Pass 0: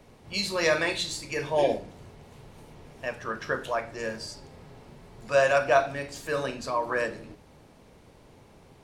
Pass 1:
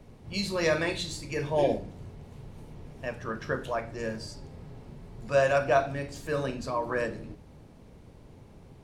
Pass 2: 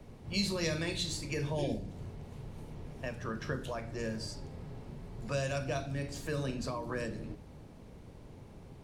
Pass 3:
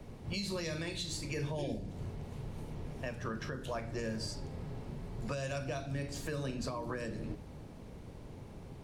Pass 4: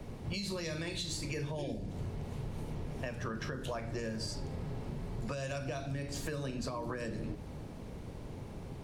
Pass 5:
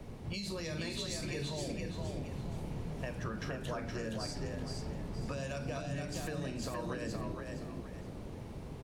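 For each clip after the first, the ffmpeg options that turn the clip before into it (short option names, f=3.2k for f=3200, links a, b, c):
-af "lowshelf=f=340:g=11,volume=-4.5dB"
-filter_complex "[0:a]acrossover=split=290|3000[a][b][c];[b]acompressor=threshold=-38dB:ratio=6[d];[a][d][c]amix=inputs=3:normalize=0"
-af "alimiter=level_in=6dB:limit=-24dB:level=0:latency=1:release=320,volume=-6dB,volume=2.5dB"
-af "acompressor=threshold=-38dB:ratio=6,volume=4dB"
-filter_complex "[0:a]asplit=5[a][b][c][d][e];[b]adelay=469,afreqshift=38,volume=-4dB[f];[c]adelay=938,afreqshift=76,volume=-13.9dB[g];[d]adelay=1407,afreqshift=114,volume=-23.8dB[h];[e]adelay=1876,afreqshift=152,volume=-33.7dB[i];[a][f][g][h][i]amix=inputs=5:normalize=0,volume=-2dB"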